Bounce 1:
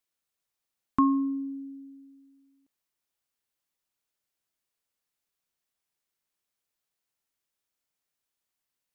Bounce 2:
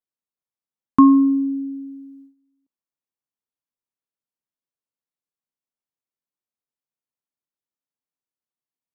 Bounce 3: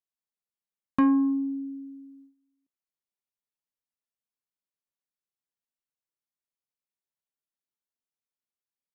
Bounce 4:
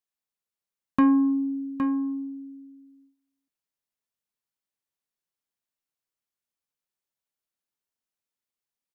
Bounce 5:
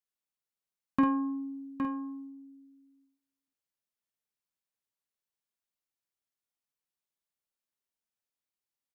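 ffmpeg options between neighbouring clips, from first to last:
-af "agate=range=-16dB:threshold=-58dB:ratio=16:detection=peak,equalizer=f=125:t=o:w=1:g=9,equalizer=f=250:t=o:w=1:g=10,equalizer=f=500:t=o:w=1:g=6,equalizer=f=1k:t=o:w=1:g=7"
-af "flanger=delay=4.4:depth=1.8:regen=72:speed=0.25:shape=triangular,asoftclip=type=tanh:threshold=-13.5dB,volume=-1.5dB"
-af "aecho=1:1:814:0.398,volume=2dB"
-filter_complex "[0:a]asplit=2[a][b];[b]adelay=49,volume=-5dB[c];[a][c]amix=inputs=2:normalize=0,volume=-5dB"

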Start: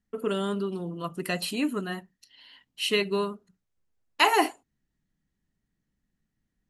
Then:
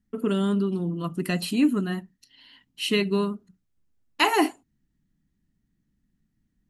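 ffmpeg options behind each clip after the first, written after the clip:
-af "lowshelf=f=370:t=q:w=1.5:g=6.5"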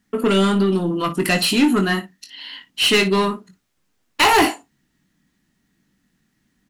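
-filter_complex "[0:a]asplit=2[a][b];[b]highpass=f=720:p=1,volume=23dB,asoftclip=type=tanh:threshold=-7.5dB[c];[a][c]amix=inputs=2:normalize=0,lowpass=f=7.4k:p=1,volume=-6dB,asplit=2[d][e];[e]aecho=0:1:21|57:0.398|0.178[f];[d][f]amix=inputs=2:normalize=0"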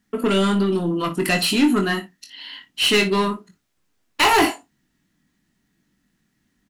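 -filter_complex "[0:a]asplit=2[a][b];[b]adelay=24,volume=-11dB[c];[a][c]amix=inputs=2:normalize=0,volume=-2dB"

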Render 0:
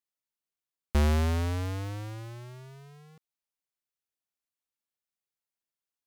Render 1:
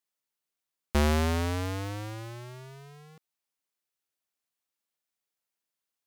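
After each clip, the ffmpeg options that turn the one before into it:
-af "lowshelf=f=100:g=-10,volume=4dB"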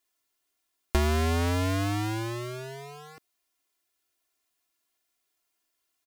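-af "aecho=1:1:2.9:0.99,acompressor=threshold=-29dB:ratio=4,volume=6dB"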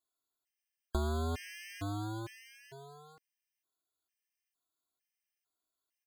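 -af "afftfilt=real='re*gt(sin(2*PI*1.1*pts/sr)*(1-2*mod(floor(b*sr/1024/1600),2)),0)':imag='im*gt(sin(2*PI*1.1*pts/sr)*(1-2*mod(floor(b*sr/1024/1600),2)),0)':win_size=1024:overlap=0.75,volume=-8.5dB"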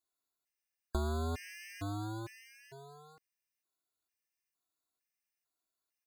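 -af "asuperstop=centerf=3200:order=4:qfactor=7.7,volume=-1dB"

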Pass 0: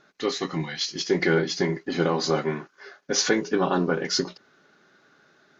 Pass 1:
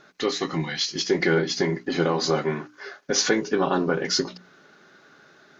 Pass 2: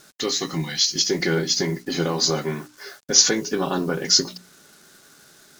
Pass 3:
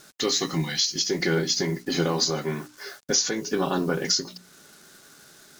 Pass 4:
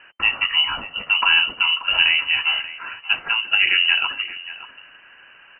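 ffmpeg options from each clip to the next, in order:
-filter_complex "[0:a]bandreject=f=60:t=h:w=6,bandreject=f=120:t=h:w=6,bandreject=f=180:t=h:w=6,bandreject=f=240:t=h:w=6,bandreject=f=300:t=h:w=6,asplit=2[a][b];[b]acompressor=threshold=-33dB:ratio=6,volume=2.5dB[c];[a][c]amix=inputs=2:normalize=0,volume=-1.5dB"
-af "acrusher=bits=8:mix=0:aa=0.5,bass=f=250:g=5,treble=f=4k:g=15,volume=-2.5dB"
-af "alimiter=limit=-12dB:level=0:latency=1:release=433"
-filter_complex "[0:a]lowpass=f=2.6k:t=q:w=0.5098,lowpass=f=2.6k:t=q:w=0.6013,lowpass=f=2.6k:t=q:w=0.9,lowpass=f=2.6k:t=q:w=2.563,afreqshift=-3100,asplit=2[a][b];[b]adelay=583.1,volume=-13dB,highshelf=f=4k:g=-13.1[c];[a][c]amix=inputs=2:normalize=0,volume=7.5dB"

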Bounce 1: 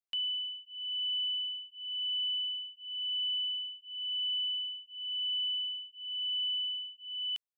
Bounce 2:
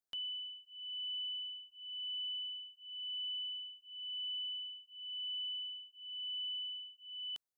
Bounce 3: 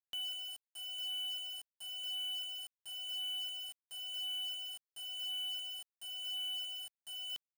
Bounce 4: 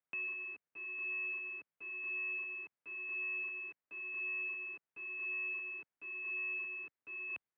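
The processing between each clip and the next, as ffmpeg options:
-af "equalizer=f=2.5k:t=o:w=0.77:g=-13.5,volume=1.5dB"
-af "acrusher=bits=7:mix=0:aa=0.000001"
-af "highpass=f=240:t=q:w=0.5412,highpass=f=240:t=q:w=1.307,lowpass=f=2.8k:t=q:w=0.5176,lowpass=f=2.8k:t=q:w=0.7071,lowpass=f=2.8k:t=q:w=1.932,afreqshift=-390,highpass=110,volume=5.5dB"

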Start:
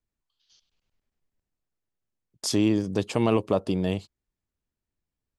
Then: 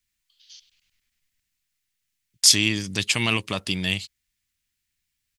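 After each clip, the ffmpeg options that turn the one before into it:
-af "firequalizer=gain_entry='entry(120,0);entry(460,-11);entry(2000,15)':delay=0.05:min_phase=1"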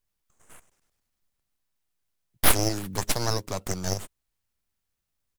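-filter_complex "[0:a]acrossover=split=310|1200[a][b][c];[a]alimiter=level_in=7.5dB:limit=-24dB:level=0:latency=1,volume=-7.5dB[d];[c]aeval=exprs='abs(val(0))':c=same[e];[d][b][e]amix=inputs=3:normalize=0,volume=-1dB"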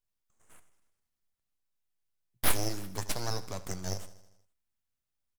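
-af "flanger=delay=7.9:depth=3.6:regen=75:speed=0.4:shape=triangular,aecho=1:1:79|158|237|316|395|474:0.141|0.0848|0.0509|0.0305|0.0183|0.011,volume=-3.5dB"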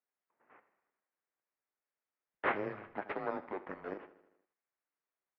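-af "highpass=f=500:t=q:w=0.5412,highpass=f=500:t=q:w=1.307,lowpass=f=2.4k:t=q:w=0.5176,lowpass=f=2.4k:t=q:w=0.7071,lowpass=f=2.4k:t=q:w=1.932,afreqshift=-200,volume=3dB"

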